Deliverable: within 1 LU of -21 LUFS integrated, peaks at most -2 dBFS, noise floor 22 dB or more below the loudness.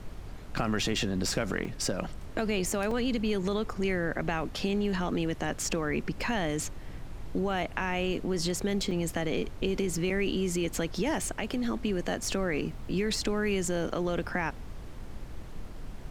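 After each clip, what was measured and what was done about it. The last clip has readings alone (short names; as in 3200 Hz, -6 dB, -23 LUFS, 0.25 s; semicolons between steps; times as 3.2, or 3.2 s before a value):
dropouts 4; longest dropout 3.2 ms; noise floor -42 dBFS; noise floor target -53 dBFS; loudness -31.0 LUFS; peak -14.0 dBFS; loudness target -21.0 LUFS
-> interpolate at 1.65/2.91/8.91/10.1, 3.2 ms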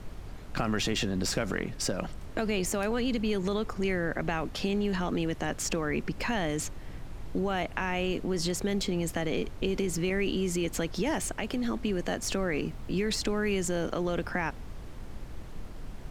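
dropouts 0; noise floor -42 dBFS; noise floor target -53 dBFS
-> noise print and reduce 11 dB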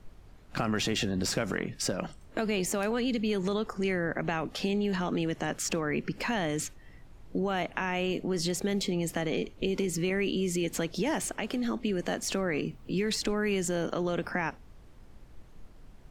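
noise floor -53 dBFS; loudness -31.0 LUFS; peak -15.0 dBFS; loudness target -21.0 LUFS
-> gain +10 dB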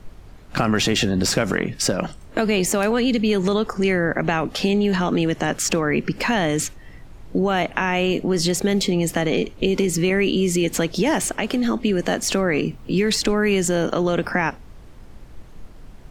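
loudness -21.0 LUFS; peak -5.0 dBFS; noise floor -43 dBFS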